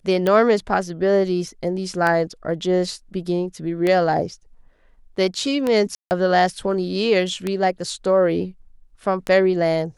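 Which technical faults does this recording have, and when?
tick 33 1/3 rpm -9 dBFS
5.95–6.11 gap 0.159 s

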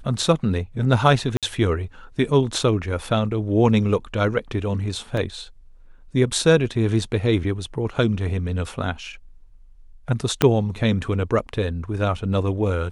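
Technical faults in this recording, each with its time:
1.37–1.43 gap 57 ms
5.17 gap 3.1 ms
10.42 pop -2 dBFS

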